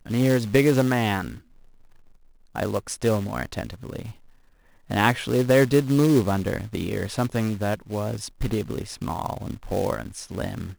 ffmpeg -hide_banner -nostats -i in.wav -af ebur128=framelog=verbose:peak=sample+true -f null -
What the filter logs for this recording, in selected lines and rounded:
Integrated loudness:
  I:         -24.2 LUFS
  Threshold: -35.2 LUFS
Loudness range:
  LRA:         8.2 LU
  Threshold: -45.2 LUFS
  LRA low:   -30.7 LUFS
  LRA high:  -22.5 LUFS
Sample peak:
  Peak:       -5.5 dBFS
True peak:
  Peak:       -4.8 dBFS